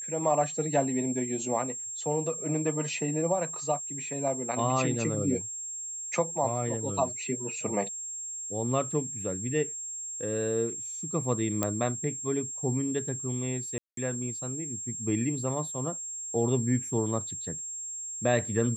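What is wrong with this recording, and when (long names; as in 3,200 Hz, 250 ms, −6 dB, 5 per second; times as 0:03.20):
whistle 7,500 Hz −35 dBFS
0:11.63: click −12 dBFS
0:13.78–0:13.97: drop-out 193 ms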